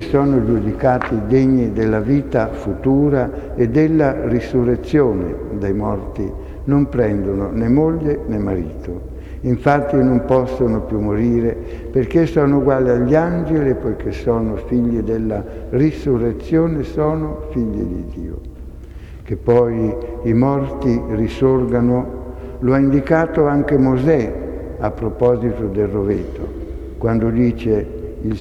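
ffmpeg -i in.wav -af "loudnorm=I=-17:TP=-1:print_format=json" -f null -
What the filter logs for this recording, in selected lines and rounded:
"input_i" : "-17.6",
"input_tp" : "-2.5",
"input_lra" : "3.6",
"input_thresh" : "-28.0",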